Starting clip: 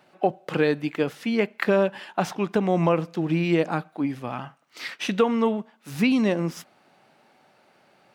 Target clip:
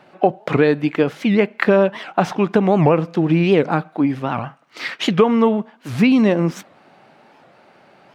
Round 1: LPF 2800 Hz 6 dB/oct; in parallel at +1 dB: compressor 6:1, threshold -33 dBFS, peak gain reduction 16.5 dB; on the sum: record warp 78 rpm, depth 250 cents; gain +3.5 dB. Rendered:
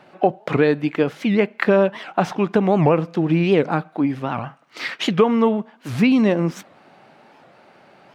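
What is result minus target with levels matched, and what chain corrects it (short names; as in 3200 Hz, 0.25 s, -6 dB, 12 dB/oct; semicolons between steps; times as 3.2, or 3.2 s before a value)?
compressor: peak gain reduction +7 dB
LPF 2800 Hz 6 dB/oct; in parallel at +1 dB: compressor 6:1, threshold -24.5 dBFS, peak gain reduction 9.5 dB; on the sum: record warp 78 rpm, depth 250 cents; gain +3.5 dB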